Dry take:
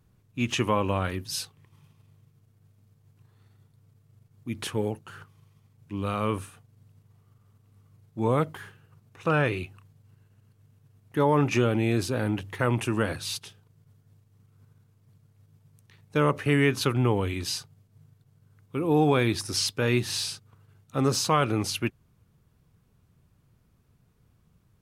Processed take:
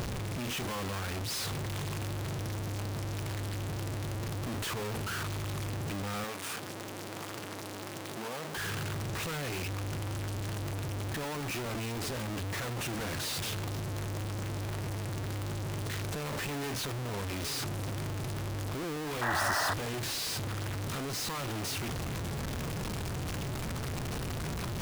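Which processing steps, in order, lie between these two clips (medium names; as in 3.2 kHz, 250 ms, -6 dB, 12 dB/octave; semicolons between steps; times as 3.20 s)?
one-bit delta coder 64 kbps, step -21.5 dBFS; echo that smears into a reverb 757 ms, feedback 69%, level -16 dB; Schmitt trigger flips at -30.5 dBFS; 6.24–8.57 s: high-pass 230 Hz 12 dB/octave; compression 2.5:1, threshold -39 dBFS, peak gain reduction 10 dB; 19.21–19.74 s: painted sound noise 560–2000 Hz -30 dBFS; trim -1 dB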